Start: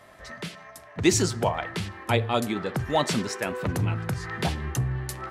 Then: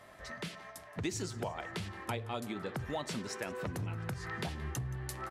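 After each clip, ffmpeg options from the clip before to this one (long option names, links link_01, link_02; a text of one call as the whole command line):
ffmpeg -i in.wav -af "acompressor=threshold=-32dB:ratio=4,aecho=1:1:174|348|522|696:0.106|0.0561|0.0298|0.0158,volume=-4dB" out.wav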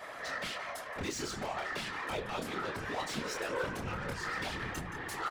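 ffmpeg -i in.wav -filter_complex "[0:a]asplit=2[link_01][link_02];[link_02]highpass=frequency=720:poles=1,volume=26dB,asoftclip=type=tanh:threshold=-22dB[link_03];[link_01][link_03]amix=inputs=2:normalize=0,lowpass=frequency=4400:poles=1,volume=-6dB,asplit=2[link_04][link_05];[link_05]adelay=26,volume=-3.5dB[link_06];[link_04][link_06]amix=inputs=2:normalize=0,afftfilt=real='hypot(re,im)*cos(2*PI*random(0))':imag='hypot(re,im)*sin(2*PI*random(1))':win_size=512:overlap=0.75,volume=-2dB" out.wav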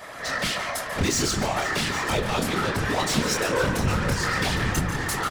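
ffmpeg -i in.wav -filter_complex "[0:a]bass=frequency=250:gain=7,treble=frequency=4000:gain=6,dynaudnorm=framelen=100:gausssize=5:maxgain=6dB,asplit=2[link_01][link_02];[link_02]aecho=0:1:141|487|811:0.224|0.168|0.211[link_03];[link_01][link_03]amix=inputs=2:normalize=0,volume=4.5dB" out.wav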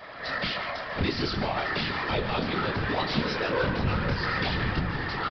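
ffmpeg -i in.wav -af "aresample=11025,aresample=44100,volume=-3dB" out.wav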